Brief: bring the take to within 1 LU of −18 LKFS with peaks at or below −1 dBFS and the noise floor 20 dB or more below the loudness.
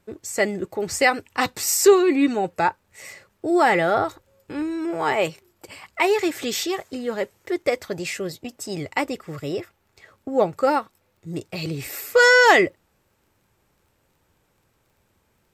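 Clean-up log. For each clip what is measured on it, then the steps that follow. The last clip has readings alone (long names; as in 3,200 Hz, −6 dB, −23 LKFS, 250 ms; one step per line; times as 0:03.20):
crackle rate 20 per second; integrated loudness −21.5 LKFS; sample peak −3.0 dBFS; target loudness −18.0 LKFS
→ click removal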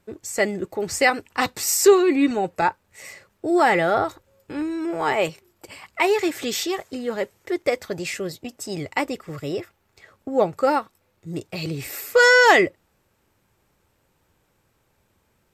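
crackle rate 0 per second; integrated loudness −21.5 LKFS; sample peak −3.0 dBFS; target loudness −18.0 LKFS
→ level +3.5 dB
brickwall limiter −1 dBFS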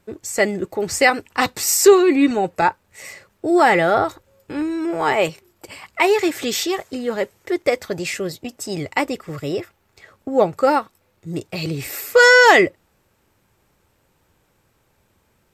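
integrated loudness −18.0 LKFS; sample peak −1.0 dBFS; background noise floor −64 dBFS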